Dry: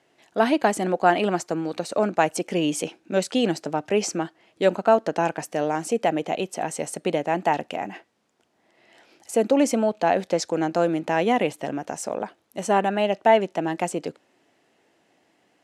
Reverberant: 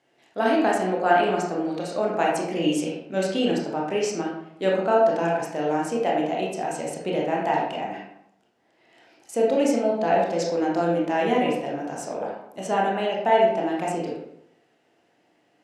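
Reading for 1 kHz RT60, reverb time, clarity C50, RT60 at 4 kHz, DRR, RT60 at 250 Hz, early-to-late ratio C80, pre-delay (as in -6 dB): 0.75 s, 0.75 s, 1.5 dB, 0.45 s, -3.5 dB, 0.80 s, 5.5 dB, 21 ms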